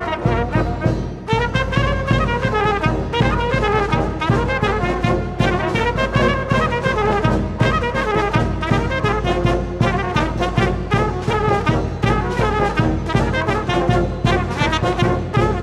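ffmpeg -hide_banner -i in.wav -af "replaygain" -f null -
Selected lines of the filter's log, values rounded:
track_gain = +0.8 dB
track_peak = 0.586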